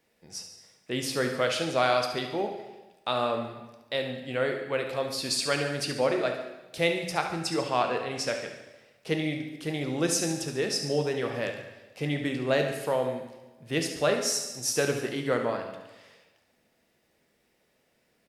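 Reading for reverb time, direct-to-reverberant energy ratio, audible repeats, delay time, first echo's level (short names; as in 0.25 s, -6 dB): 1.1 s, 3.5 dB, 2, 71 ms, -10.5 dB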